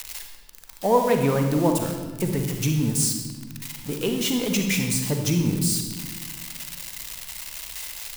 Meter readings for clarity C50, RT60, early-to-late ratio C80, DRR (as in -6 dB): 4.5 dB, 1.4 s, 6.5 dB, 4.0 dB